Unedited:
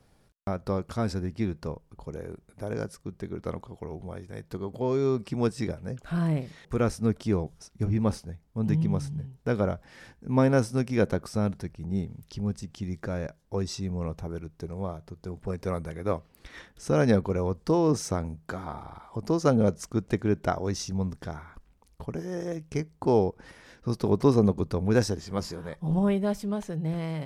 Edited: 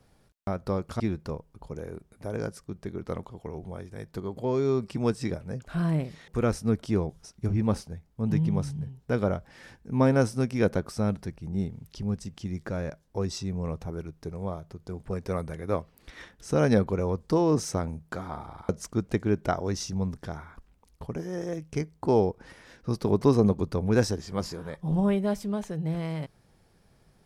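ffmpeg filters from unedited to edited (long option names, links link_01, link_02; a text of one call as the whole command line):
ffmpeg -i in.wav -filter_complex "[0:a]asplit=3[link_01][link_02][link_03];[link_01]atrim=end=1.002[link_04];[link_02]atrim=start=1.368:end=19.062[link_05];[link_03]atrim=start=19.678[link_06];[link_04][link_05]acrossfade=duration=0.004:curve1=hsin:curve2=hsin[link_07];[link_07][link_06]acrossfade=duration=0.004:curve1=hsin:curve2=hsin" out.wav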